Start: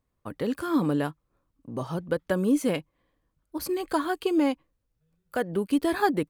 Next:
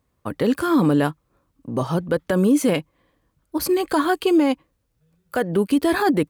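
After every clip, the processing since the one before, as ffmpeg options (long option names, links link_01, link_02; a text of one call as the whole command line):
ffmpeg -i in.wav -af "highpass=46,alimiter=limit=-19dB:level=0:latency=1:release=20,volume=9dB" out.wav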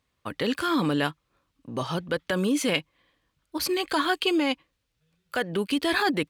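ffmpeg -i in.wav -af "equalizer=frequency=3200:width_type=o:width=2.4:gain=13.5,volume=-8.5dB" out.wav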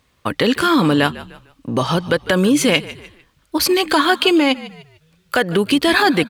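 ffmpeg -i in.wav -filter_complex "[0:a]asplit=4[link_01][link_02][link_03][link_04];[link_02]adelay=150,afreqshift=-54,volume=-19dB[link_05];[link_03]adelay=300,afreqshift=-108,volume=-29.5dB[link_06];[link_04]adelay=450,afreqshift=-162,volume=-39.9dB[link_07];[link_01][link_05][link_06][link_07]amix=inputs=4:normalize=0,asplit=2[link_08][link_09];[link_09]acompressor=threshold=-33dB:ratio=6,volume=3dB[link_10];[link_08][link_10]amix=inputs=2:normalize=0,volume=7dB" out.wav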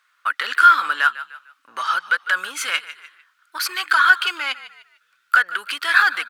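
ffmpeg -i in.wav -af "asoftclip=type=tanh:threshold=-7dB,highpass=frequency=1400:width_type=q:width=7.2,volume=-6dB" out.wav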